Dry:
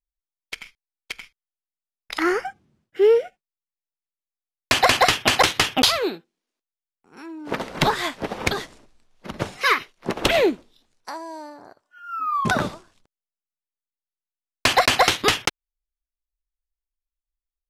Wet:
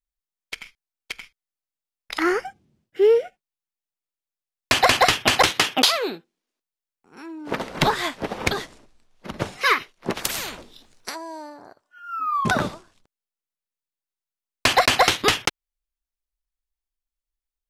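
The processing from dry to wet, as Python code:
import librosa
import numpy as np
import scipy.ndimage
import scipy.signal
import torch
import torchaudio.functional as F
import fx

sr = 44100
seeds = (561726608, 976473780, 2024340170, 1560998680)

y = fx.peak_eq(x, sr, hz=1300.0, db=fx.line((2.39, -8.5), (3.22, -2.5)), octaves=1.4, at=(2.39, 3.22), fade=0.02)
y = fx.highpass(y, sr, hz=fx.line((5.5, 120.0), (6.07, 410.0)), slope=12, at=(5.5, 6.07), fade=0.02)
y = fx.spectral_comp(y, sr, ratio=10.0, at=(10.14, 11.14), fade=0.02)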